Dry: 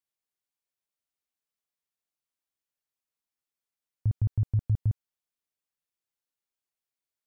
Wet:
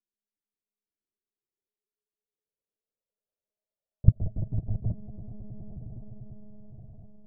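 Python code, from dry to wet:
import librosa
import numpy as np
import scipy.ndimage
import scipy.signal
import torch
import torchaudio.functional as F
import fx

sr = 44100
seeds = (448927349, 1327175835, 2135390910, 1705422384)

y = fx.low_shelf(x, sr, hz=130.0, db=4.5)
y = fx.echo_swell(y, sr, ms=102, loudest=8, wet_db=-13.0)
y = fx.dynamic_eq(y, sr, hz=250.0, q=0.96, threshold_db=-42.0, ratio=4.0, max_db=5)
y = fx.filter_sweep_lowpass(y, sr, from_hz=320.0, to_hz=650.0, start_s=0.59, end_s=4.33, q=6.4)
y = fx.lpc_monotone(y, sr, seeds[0], pitch_hz=210.0, order=16)
y = F.gain(torch.from_numpy(y), -6.0).numpy()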